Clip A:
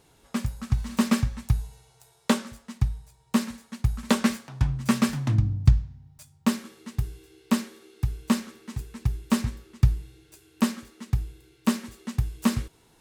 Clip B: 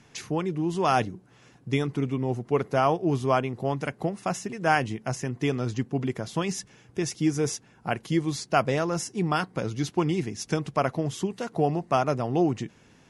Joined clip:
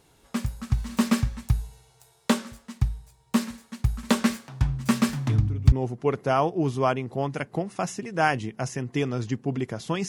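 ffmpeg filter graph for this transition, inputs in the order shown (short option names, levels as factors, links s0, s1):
-filter_complex "[1:a]asplit=2[s0][s1];[0:a]apad=whole_dur=10.08,atrim=end=10.08,atrim=end=5.722[s2];[s1]atrim=start=2.188:end=6.55[s3];[s0]atrim=start=1.76:end=2.19,asetpts=PTS-STARTPTS,volume=0.224,afade=t=in:d=0.004:c=hsin,afade=t=out:st=0.426:d=0.004:c=hsin,adelay=233289S[s4];[s2][s3]acrossfade=d=0.004:c1=hsin:c2=hsin[s5];[s5][s4]amix=inputs=2:normalize=0"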